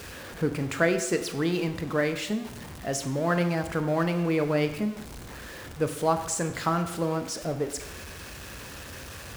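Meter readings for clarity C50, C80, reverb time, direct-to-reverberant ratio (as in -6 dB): 10.0 dB, 12.0 dB, 0.90 s, 7.5 dB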